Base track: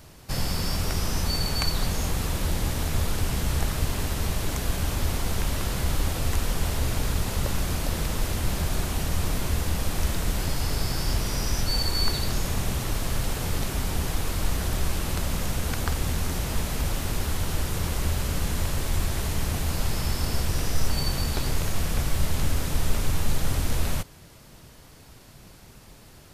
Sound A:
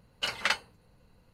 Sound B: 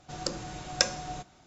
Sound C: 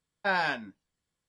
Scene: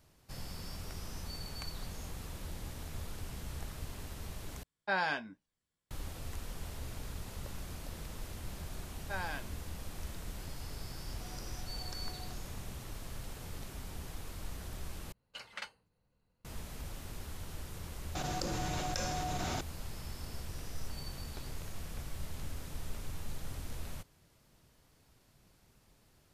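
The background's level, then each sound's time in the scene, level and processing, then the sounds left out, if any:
base track -17 dB
4.63 replace with C -5 dB
8.85 add C -12.5 dB
11.12 add B -3 dB + compressor 3:1, threshold -50 dBFS
15.12 replace with A -16 dB
18.15 add B -16.5 dB + fast leveller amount 100%

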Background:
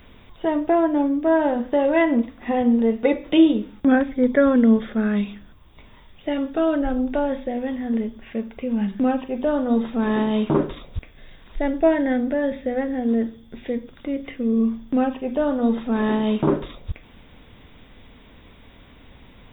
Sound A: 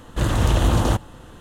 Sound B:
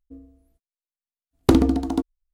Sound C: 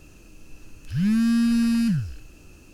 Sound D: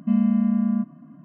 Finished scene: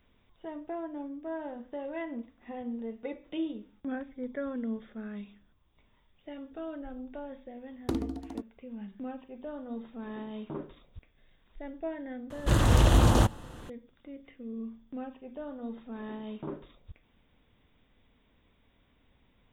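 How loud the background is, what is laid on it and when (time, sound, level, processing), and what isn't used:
background -19 dB
6.4 add B -16 dB
12.3 add A -3 dB
not used: C, D

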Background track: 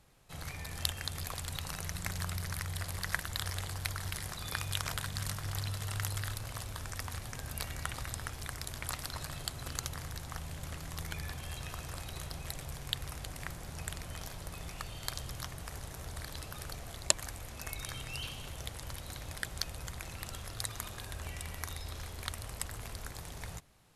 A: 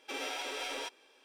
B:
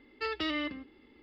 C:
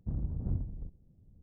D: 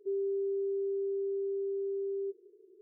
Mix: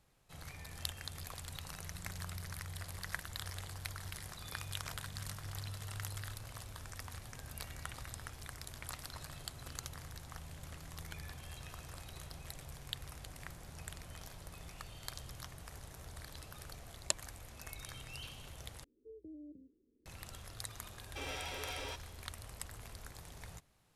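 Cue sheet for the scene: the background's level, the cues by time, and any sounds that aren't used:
background track -7 dB
18.84 replace with B -14.5 dB + steep low-pass 510 Hz 48 dB/oct
21.07 add A -5 dB
not used: C, D

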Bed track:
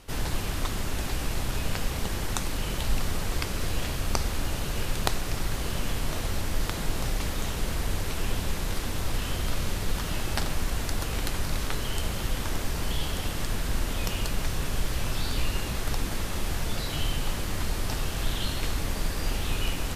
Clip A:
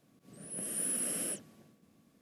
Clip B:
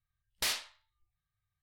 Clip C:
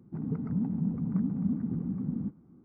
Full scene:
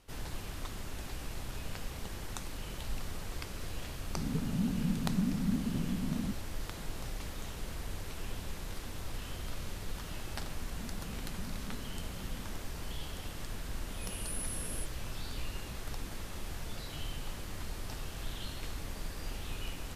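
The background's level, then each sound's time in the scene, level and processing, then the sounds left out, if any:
bed track -11.5 dB
4.03 add C -2.5 dB
10.23 add C -17.5 dB + opening faded in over 0.68 s
13.5 add A -7 dB
not used: B

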